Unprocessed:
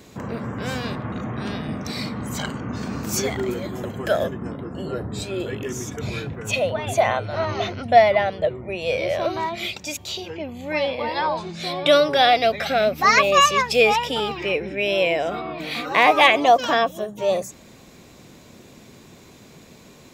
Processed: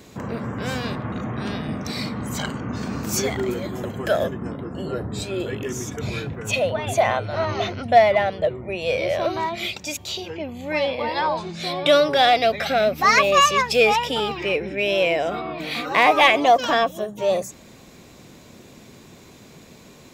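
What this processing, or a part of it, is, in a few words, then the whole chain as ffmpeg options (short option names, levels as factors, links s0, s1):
parallel distortion: -filter_complex "[0:a]asplit=2[s0][s1];[s1]asoftclip=type=hard:threshold=0.133,volume=0.282[s2];[s0][s2]amix=inputs=2:normalize=0,volume=0.841"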